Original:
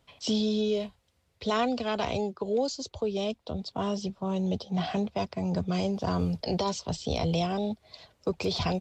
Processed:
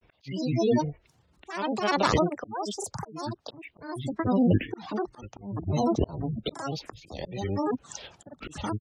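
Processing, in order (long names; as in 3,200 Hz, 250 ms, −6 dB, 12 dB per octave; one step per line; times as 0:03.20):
gate on every frequency bin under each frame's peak −25 dB strong
granular cloud 100 ms, grains 20 per second, spray 36 ms, pitch spread up and down by 12 semitones
volume swells 656 ms
level +8.5 dB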